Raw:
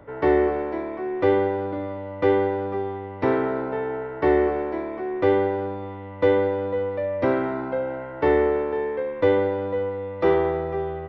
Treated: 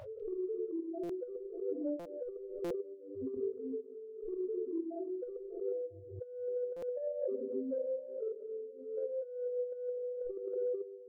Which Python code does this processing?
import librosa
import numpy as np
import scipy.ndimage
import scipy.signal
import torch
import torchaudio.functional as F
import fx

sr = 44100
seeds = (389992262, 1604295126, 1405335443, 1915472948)

y = np.minimum(x, 2.0 * 10.0 ** (-19.5 / 20.0) - x)
y = fx.spec_topn(y, sr, count=1)
y = fx.highpass(y, sr, hz=80.0, slope=6)
y = fx.low_shelf(y, sr, hz=390.0, db=-8.5)
y = fx.room_shoebox(y, sr, seeds[0], volume_m3=99.0, walls='mixed', distance_m=0.99)
y = fx.dereverb_blind(y, sr, rt60_s=0.98)
y = fx.echo_stepped(y, sr, ms=198, hz=3300.0, octaves=-0.7, feedback_pct=70, wet_db=-11)
y = fx.over_compress(y, sr, threshold_db=-37.0, ratio=-0.5)
y = fx.bass_treble(y, sr, bass_db=-4, treble_db=-7)
y = fx.buffer_glitch(y, sr, at_s=(1.03, 1.99, 2.64, 6.76), block=256, repeats=10)
y = fx.pre_swell(y, sr, db_per_s=67.0)
y = F.gain(torch.from_numpy(y), 1.0).numpy()